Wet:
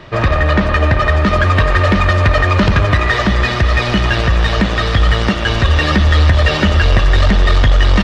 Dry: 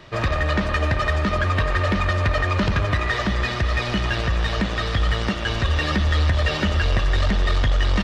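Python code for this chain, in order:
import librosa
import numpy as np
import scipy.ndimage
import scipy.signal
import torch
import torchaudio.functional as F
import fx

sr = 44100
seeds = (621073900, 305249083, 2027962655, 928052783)

y = fx.high_shelf(x, sr, hz=4500.0, db=fx.steps((0.0, -10.0), (1.24, -3.0)))
y = F.gain(torch.from_numpy(y), 9.0).numpy()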